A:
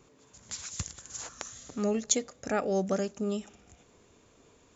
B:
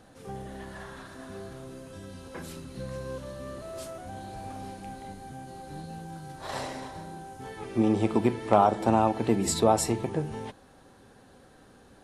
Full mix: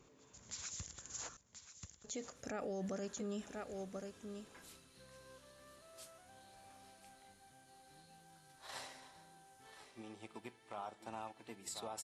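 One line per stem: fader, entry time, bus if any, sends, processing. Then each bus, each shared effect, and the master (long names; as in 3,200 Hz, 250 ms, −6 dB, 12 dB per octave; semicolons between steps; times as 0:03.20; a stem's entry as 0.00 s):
−5.0 dB, 0.00 s, muted 0:01.37–0:02.04, no send, echo send −12.5 dB, no processing
0:09.75 −9 dB → 0:10.01 −18 dB, 2.20 s, no send, echo send −13.5 dB, tilt shelving filter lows −8.5 dB, about 860 Hz; expander for the loud parts 1.5 to 1, over −39 dBFS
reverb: not used
echo: single-tap delay 1,035 ms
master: brickwall limiter −34.5 dBFS, peak gain reduction 18.5 dB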